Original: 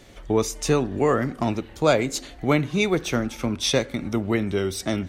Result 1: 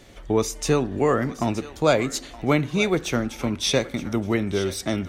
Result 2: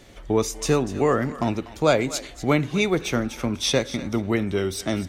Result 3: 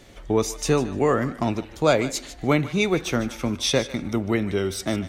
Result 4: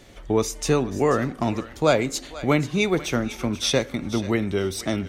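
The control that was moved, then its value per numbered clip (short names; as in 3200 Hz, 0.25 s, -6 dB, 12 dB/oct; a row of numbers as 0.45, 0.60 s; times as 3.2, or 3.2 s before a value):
thinning echo, time: 0.921, 0.244, 0.15, 0.486 s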